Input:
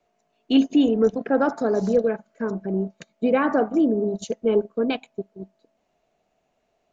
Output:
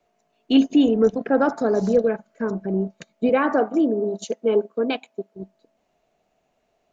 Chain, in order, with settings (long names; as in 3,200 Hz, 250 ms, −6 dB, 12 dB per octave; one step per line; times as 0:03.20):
0:03.29–0:05.35: high-pass filter 250 Hz 12 dB per octave
level +1.5 dB